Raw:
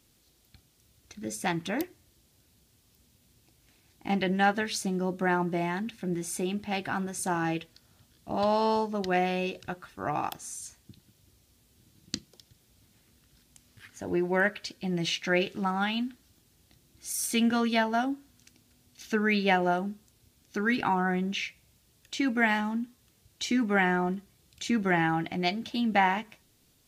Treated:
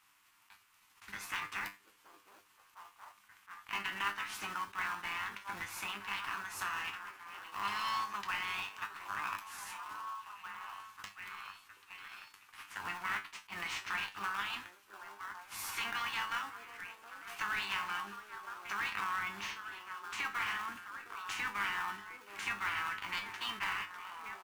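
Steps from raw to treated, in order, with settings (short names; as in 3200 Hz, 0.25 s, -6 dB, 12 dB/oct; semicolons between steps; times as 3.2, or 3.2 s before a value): spectral limiter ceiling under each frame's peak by 22 dB; on a send: delay with a stepping band-pass 0.79 s, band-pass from 450 Hz, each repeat 0.7 oct, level -11 dB; on the sum: one-sided clip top -24.5 dBFS; band shelf 1800 Hz +8.5 dB; in parallel at -5 dB: sample-rate reducer 2000 Hz, jitter 20%; on the sum: resonant low shelf 760 Hz -10 dB, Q 3; compressor 2:1, threshold -35 dBFS, peak gain reduction 12 dB; tempo 1.1×; resonator 100 Hz, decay 0.25 s, harmonics all, mix 80%; attack slew limiter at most 330 dB/s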